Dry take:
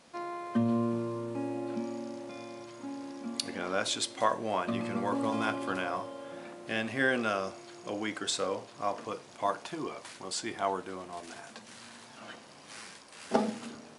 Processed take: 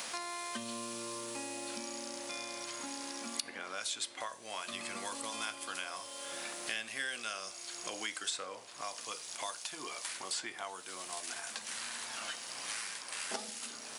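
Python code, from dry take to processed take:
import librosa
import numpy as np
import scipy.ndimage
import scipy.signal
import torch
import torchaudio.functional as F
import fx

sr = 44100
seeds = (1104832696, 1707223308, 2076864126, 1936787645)

y = scipy.signal.lfilter([1.0, -0.97], [1.0], x)
y = fx.band_squash(y, sr, depth_pct=100)
y = F.gain(torch.from_numpy(y), 8.0).numpy()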